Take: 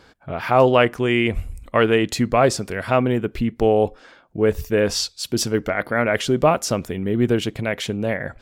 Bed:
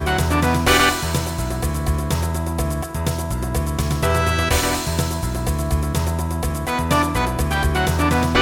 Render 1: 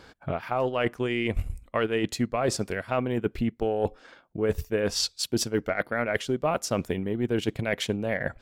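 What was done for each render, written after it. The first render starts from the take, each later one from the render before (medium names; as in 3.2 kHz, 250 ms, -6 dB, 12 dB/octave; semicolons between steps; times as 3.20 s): reverse; compression 6:1, threshold -25 dBFS, peak gain reduction 14.5 dB; reverse; transient shaper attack +5 dB, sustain -6 dB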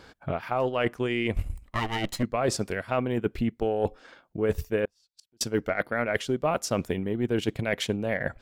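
1.36–2.23 s: comb filter that takes the minimum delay 1 ms; 4.85–5.41 s: inverted gate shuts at -27 dBFS, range -40 dB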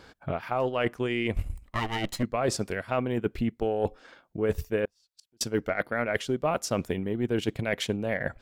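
trim -1 dB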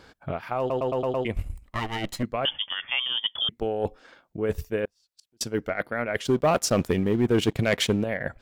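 0.59 s: stutter in place 0.11 s, 6 plays; 2.45–3.49 s: frequency inversion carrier 3.4 kHz; 6.25–8.04 s: waveshaping leveller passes 2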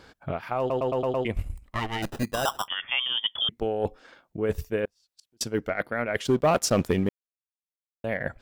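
2.02–2.68 s: sample-rate reducer 2.2 kHz; 7.09–8.04 s: mute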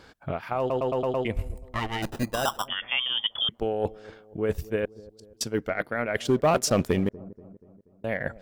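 feedback echo behind a low-pass 240 ms, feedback 51%, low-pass 610 Hz, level -18 dB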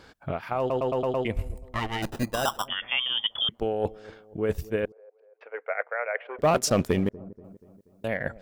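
4.92–6.39 s: Chebyshev band-pass 480–2400 Hz, order 4; 7.44–8.08 s: treble shelf 2.5 kHz +11.5 dB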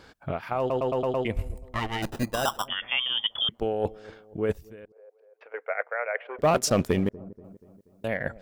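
4.52–5.54 s: compression 4:1, threshold -45 dBFS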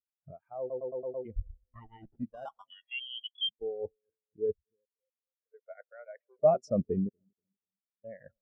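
spectral contrast expander 2.5:1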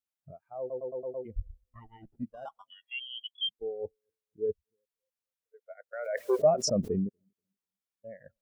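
5.93–7.02 s: swell ahead of each attack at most 39 dB/s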